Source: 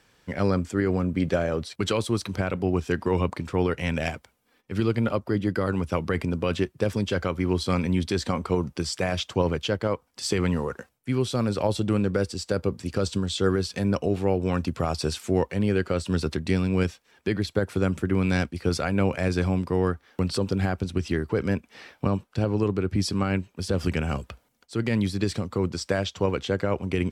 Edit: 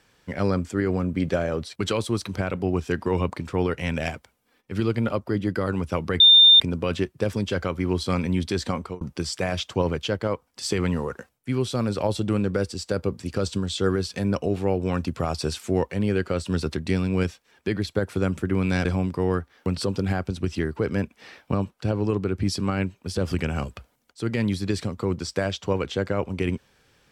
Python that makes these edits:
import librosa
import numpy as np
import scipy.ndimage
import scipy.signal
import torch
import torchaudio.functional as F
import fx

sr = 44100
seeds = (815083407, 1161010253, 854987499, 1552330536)

y = fx.edit(x, sr, fx.insert_tone(at_s=6.2, length_s=0.4, hz=3610.0, db=-9.0),
    fx.fade_out_span(start_s=8.25, length_s=0.36, curve='qsin'),
    fx.cut(start_s=18.45, length_s=0.93), tone=tone)